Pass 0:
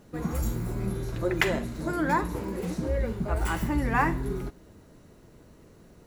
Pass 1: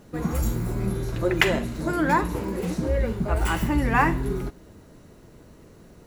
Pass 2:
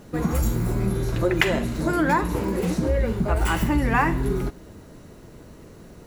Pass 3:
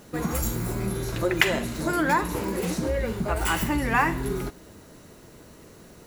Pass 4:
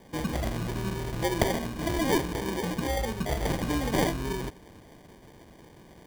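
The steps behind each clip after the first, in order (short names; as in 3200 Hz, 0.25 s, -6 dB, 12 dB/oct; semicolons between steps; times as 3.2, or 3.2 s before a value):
dynamic EQ 2800 Hz, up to +4 dB, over -54 dBFS, Q 3.7; gain +4 dB
compressor 2:1, threshold -24 dBFS, peak gain reduction 6.5 dB; gain +4.5 dB
tilt +1.5 dB/oct; gain -1 dB
sample-and-hold 33×; gain -3 dB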